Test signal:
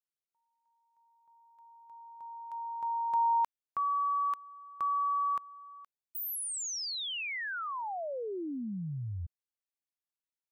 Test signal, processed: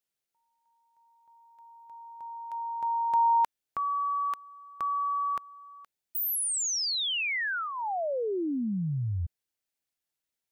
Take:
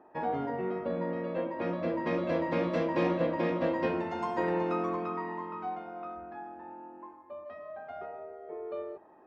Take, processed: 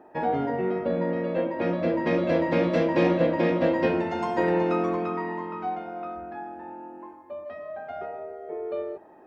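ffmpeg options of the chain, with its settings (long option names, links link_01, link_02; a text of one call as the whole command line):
ffmpeg -i in.wav -af "equalizer=frequency=1100:width_type=o:width=0.42:gain=-6.5,volume=7dB" out.wav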